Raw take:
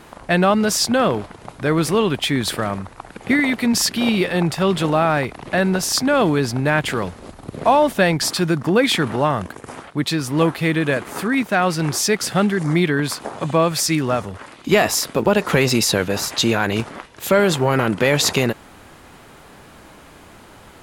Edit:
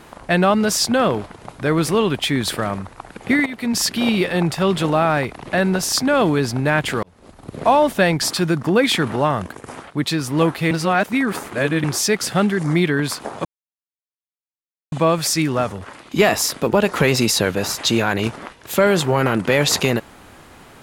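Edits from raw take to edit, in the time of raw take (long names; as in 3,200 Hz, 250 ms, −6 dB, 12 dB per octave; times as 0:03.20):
0:03.46–0:04.03: fade in equal-power, from −14 dB
0:07.03–0:07.60: fade in
0:10.71–0:11.84: reverse
0:13.45: splice in silence 1.47 s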